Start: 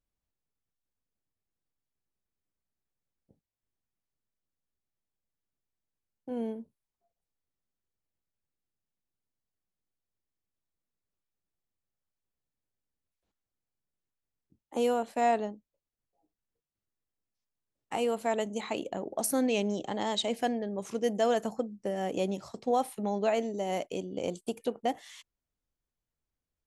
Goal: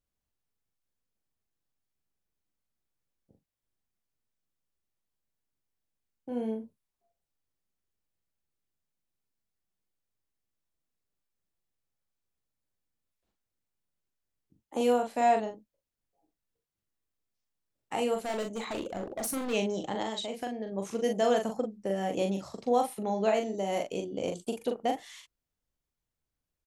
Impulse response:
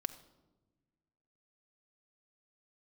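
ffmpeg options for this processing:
-filter_complex "[0:a]asplit=3[link_01][link_02][link_03];[link_01]afade=type=out:start_time=18.14:duration=0.02[link_04];[link_02]volume=31dB,asoftclip=hard,volume=-31dB,afade=type=in:start_time=18.14:duration=0.02,afade=type=out:start_time=19.52:duration=0.02[link_05];[link_03]afade=type=in:start_time=19.52:duration=0.02[link_06];[link_04][link_05][link_06]amix=inputs=3:normalize=0,asettb=1/sr,asplit=3[link_07][link_08][link_09];[link_07]atrim=end=20.024[link_10];[link_08]atrim=start=20.02:end=20.72,asetpts=PTS-STARTPTS,afade=type=in:duration=0.004:curve=qsin,afade=type=out:start_time=0.696:duration=0.004:curve=qsin,acompressor=threshold=-33dB:ratio=6[link_11];[link_09]atrim=start=20.716[link_12];[link_10][link_11]acrossfade=duration=0.004:curve1=hsin:curve2=qsin[link_13];[link_13][link_12]acrossfade=duration=0.004:curve1=qsin:curve2=hsin,asplit=2[link_14][link_15];[link_15]adelay=41,volume=-5dB[link_16];[link_14][link_16]amix=inputs=2:normalize=0"

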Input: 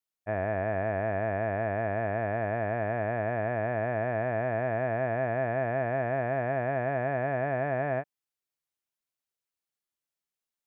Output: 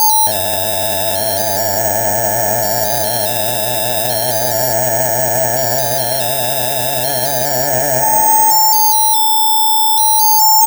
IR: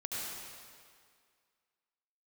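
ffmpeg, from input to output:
-filter_complex "[0:a]equalizer=frequency=970:width_type=o:width=2.5:gain=4.5,asplit=6[link_01][link_02][link_03][link_04][link_05][link_06];[link_02]adelay=273,afreqshift=65,volume=-22dB[link_07];[link_03]adelay=546,afreqshift=130,volume=-26dB[link_08];[link_04]adelay=819,afreqshift=195,volume=-30dB[link_09];[link_05]adelay=1092,afreqshift=260,volume=-34dB[link_10];[link_06]adelay=1365,afreqshift=325,volume=-38.1dB[link_11];[link_01][link_07][link_08][link_09][link_10][link_11]amix=inputs=6:normalize=0,asplit=2[link_12][link_13];[1:a]atrim=start_sample=2205,adelay=53[link_14];[link_13][link_14]afir=irnorm=-1:irlink=0,volume=-18.5dB[link_15];[link_12][link_15]amix=inputs=2:normalize=0,aeval=exprs='val(0)+0.0224*sin(2*PI*870*n/s)':channel_layout=same,acrusher=samples=8:mix=1:aa=0.000001:lfo=1:lforange=4.8:lforate=0.34,asoftclip=type=tanh:threshold=-20dB,asuperstop=centerf=1100:order=4:qfactor=2.7,aemphasis=mode=production:type=75kf,acompressor=threshold=-40dB:ratio=2,asplit=2[link_16][link_17];[link_17]adelay=24,volume=-12dB[link_18];[link_16][link_18]amix=inputs=2:normalize=0,alimiter=level_in=34.5dB:limit=-1dB:release=50:level=0:latency=1,volume=-1dB"

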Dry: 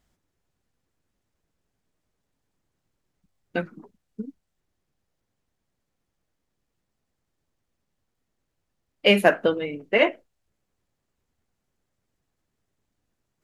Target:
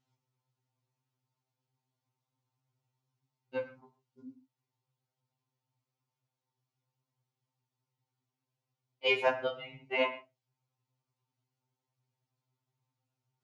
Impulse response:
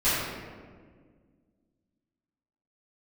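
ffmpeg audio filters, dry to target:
-filter_complex "[0:a]highpass=110,equalizer=frequency=120:width_type=q:width=4:gain=8,equalizer=frequency=210:width_type=q:width=4:gain=-10,equalizer=frequency=350:width_type=q:width=4:gain=-6,equalizer=frequency=590:width_type=q:width=4:gain=-8,equalizer=frequency=890:width_type=q:width=4:gain=9,equalizer=frequency=1700:width_type=q:width=4:gain=-10,lowpass=frequency=6600:width=0.5412,lowpass=frequency=6600:width=1.3066,asplit=2[link_01][link_02];[1:a]atrim=start_sample=2205,afade=type=out:start_time=0.2:duration=0.01,atrim=end_sample=9261,highshelf=frequency=10000:gain=-9.5[link_03];[link_02][link_03]afir=irnorm=-1:irlink=0,volume=-22dB[link_04];[link_01][link_04]amix=inputs=2:normalize=0,afftfilt=real='re*2.45*eq(mod(b,6),0)':imag='im*2.45*eq(mod(b,6),0)':win_size=2048:overlap=0.75,volume=-6dB"

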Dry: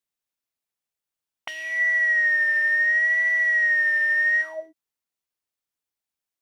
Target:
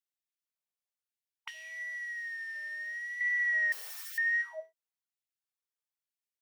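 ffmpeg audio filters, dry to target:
ffmpeg -i in.wav -filter_complex "[0:a]asettb=1/sr,asplit=3[link_01][link_02][link_03];[link_01]atrim=end=1.504[link_04];[link_02]atrim=start=1.5:end=3.21,asetpts=PTS-STARTPTS,afade=type=in:duration=0.004:curve=qsin,afade=type=out:start_time=1.706:duration=0.004:curve=qsin,acrossover=split=260|3000[link_05][link_06][link_07];[link_06]acompressor=threshold=-47dB:ratio=2[link_08];[link_05][link_08][link_07]amix=inputs=3:normalize=0[link_09];[link_03]atrim=start=3.206[link_10];[link_04][link_09]acrossfade=duration=0.004:curve1=hsin:curve2=qsin[link_11];[link_11][link_10]acrossfade=duration=0.004:curve1=qsin:curve2=hsin,asettb=1/sr,asplit=3[link_12][link_13][link_14];[link_12]atrim=end=3.724[link_15];[link_13]atrim=start=3.72:end=4.18,asetpts=PTS-STARTPTS,afade=type=in:duration=0.004:curve=qsin,afade=type=out:start_time=0.456:duration=0.004:curve=qsin,aeval=exprs='(mod(31.6*val(0)+1,2)-1)/31.6':channel_layout=same[link_16];[link_14]atrim=start=4.176[link_17];[link_15][link_16]acrossfade=duration=0.004:curve1=hsin:curve2=qsin[link_18];[link_18][link_17]acrossfade=duration=0.004:curve1=qsin:curve2=hsin,afftfilt=real='re*gte(b*sr/1024,360*pow(1700/360,0.5+0.5*sin(2*PI*1*pts/sr)))':imag='im*gte(b*sr/1024,360*pow(1700/360,0.5+0.5*sin(2*PI*1*pts/sr)))':win_size=1024:overlap=0.75,volume=-8.5dB" out.wav

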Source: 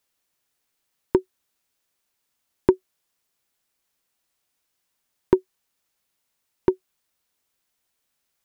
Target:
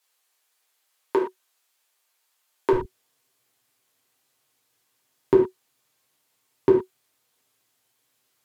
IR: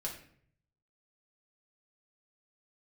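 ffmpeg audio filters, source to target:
-filter_complex "[0:a]asetnsamples=nb_out_samples=441:pad=0,asendcmd='2.73 highpass f 110',highpass=640,alimiter=limit=-8.5dB:level=0:latency=1[link_01];[1:a]atrim=start_sample=2205,atrim=end_sample=3969,asetrate=31752,aresample=44100[link_02];[link_01][link_02]afir=irnorm=-1:irlink=0,volume=4.5dB"

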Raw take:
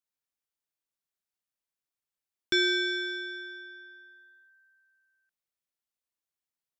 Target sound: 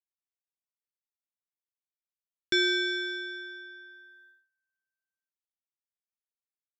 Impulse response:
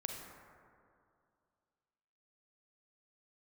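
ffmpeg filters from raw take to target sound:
-af "agate=range=-23dB:threshold=-59dB:ratio=16:detection=peak"

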